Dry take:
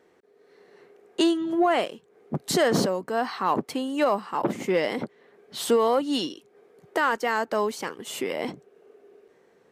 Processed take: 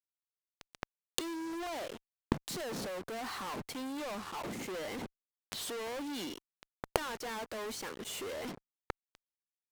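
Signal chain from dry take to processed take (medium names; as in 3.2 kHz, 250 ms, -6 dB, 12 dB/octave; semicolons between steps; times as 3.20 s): mains buzz 100 Hz, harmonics 5, -60 dBFS -5 dB/octave; fuzz box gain 46 dB, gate -43 dBFS; inverted gate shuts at -21 dBFS, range -27 dB; trim +2 dB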